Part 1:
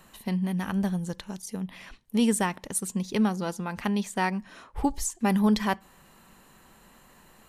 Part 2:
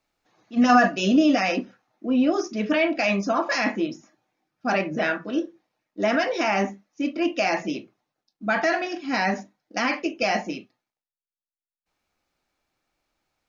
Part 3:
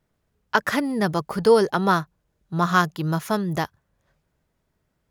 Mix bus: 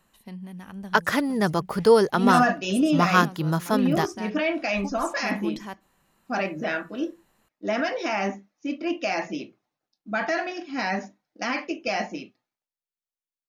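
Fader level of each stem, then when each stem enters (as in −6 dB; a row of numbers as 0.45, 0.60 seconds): −11.0, −3.5, −0.5 decibels; 0.00, 1.65, 0.40 seconds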